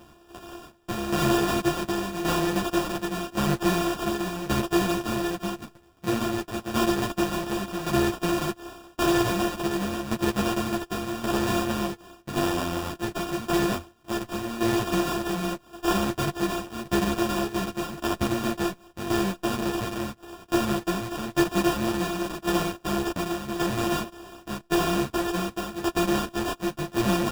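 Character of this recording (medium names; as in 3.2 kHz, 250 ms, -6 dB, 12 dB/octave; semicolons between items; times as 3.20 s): a buzz of ramps at a fixed pitch in blocks of 128 samples; tremolo saw down 0.89 Hz, depth 70%; aliases and images of a low sample rate 2.1 kHz, jitter 0%; a shimmering, thickened sound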